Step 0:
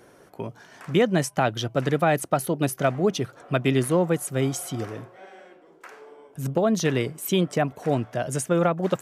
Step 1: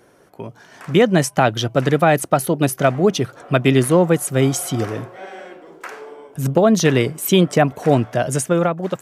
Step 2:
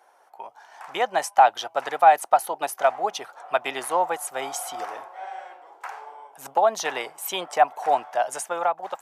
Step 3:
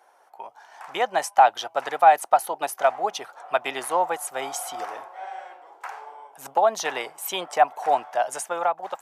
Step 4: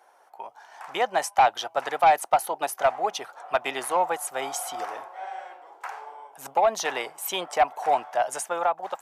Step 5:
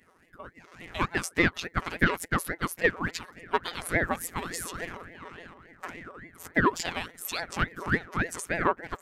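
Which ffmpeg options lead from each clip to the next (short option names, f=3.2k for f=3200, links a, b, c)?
-af "dynaudnorm=f=210:g=7:m=12.5dB"
-af "highpass=f=820:t=q:w=5.3,volume=-8dB"
-af anull
-af "asoftclip=type=tanh:threshold=-11.5dB"
-af "afftfilt=real='hypot(re,im)*cos(PI*b)':imag='0':win_size=1024:overlap=0.75,aeval=exprs='val(0)*sin(2*PI*730*n/s+730*0.65/3.5*sin(2*PI*3.5*n/s))':c=same,volume=2.5dB"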